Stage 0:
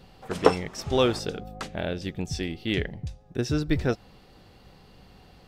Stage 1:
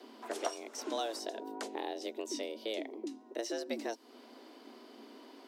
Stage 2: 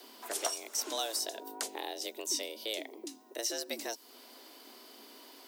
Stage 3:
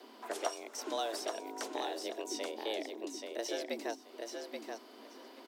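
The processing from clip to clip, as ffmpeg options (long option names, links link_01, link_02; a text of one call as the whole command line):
ffmpeg -i in.wav -filter_complex "[0:a]acrossover=split=720|4500[link_01][link_02][link_03];[link_01]acompressor=threshold=-36dB:ratio=4[link_04];[link_02]acompressor=threshold=-46dB:ratio=4[link_05];[link_03]acompressor=threshold=-42dB:ratio=4[link_06];[link_04][link_05][link_06]amix=inputs=3:normalize=0,afreqshift=220,volume=-1.5dB" out.wav
ffmpeg -i in.wav -af "aemphasis=mode=production:type=riaa" out.wav
ffmpeg -i in.wav -filter_complex "[0:a]lowpass=frequency=1500:poles=1,asplit=2[link_01][link_02];[link_02]aecho=0:1:830|1660|2490:0.562|0.09|0.0144[link_03];[link_01][link_03]amix=inputs=2:normalize=0,volume=2.5dB" out.wav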